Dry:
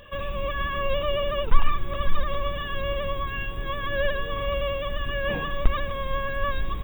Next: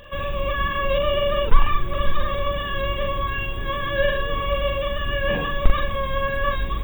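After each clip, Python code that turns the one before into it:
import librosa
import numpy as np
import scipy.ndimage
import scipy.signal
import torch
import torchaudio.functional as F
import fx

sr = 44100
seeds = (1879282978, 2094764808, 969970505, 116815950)

y = fx.doubler(x, sr, ms=42.0, db=-4.0)
y = F.gain(torch.from_numpy(y), 3.0).numpy()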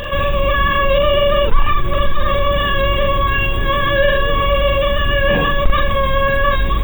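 y = fx.env_flatten(x, sr, amount_pct=50)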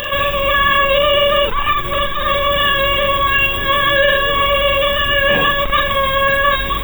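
y = fx.tilt_eq(x, sr, slope=2.5)
y = F.gain(torch.from_numpy(y), 2.0).numpy()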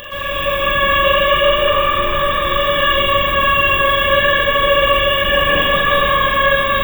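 y = fx.rev_plate(x, sr, seeds[0], rt60_s=4.6, hf_ratio=0.7, predelay_ms=105, drr_db=-9.0)
y = F.gain(torch.from_numpy(y), -9.0).numpy()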